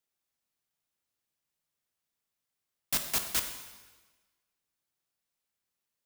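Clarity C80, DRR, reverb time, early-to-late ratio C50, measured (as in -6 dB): 9.0 dB, 5.5 dB, 1.3 s, 7.5 dB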